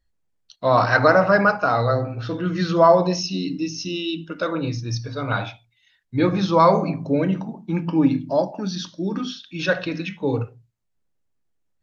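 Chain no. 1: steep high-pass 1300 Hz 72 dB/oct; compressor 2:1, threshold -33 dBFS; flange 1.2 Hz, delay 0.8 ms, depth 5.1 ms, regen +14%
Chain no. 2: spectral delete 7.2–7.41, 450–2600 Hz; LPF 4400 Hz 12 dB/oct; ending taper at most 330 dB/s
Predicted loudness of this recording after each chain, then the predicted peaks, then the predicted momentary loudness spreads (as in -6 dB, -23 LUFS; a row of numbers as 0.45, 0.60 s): -38.0, -21.5 LUFS; -20.5, -3.0 dBFS; 15, 13 LU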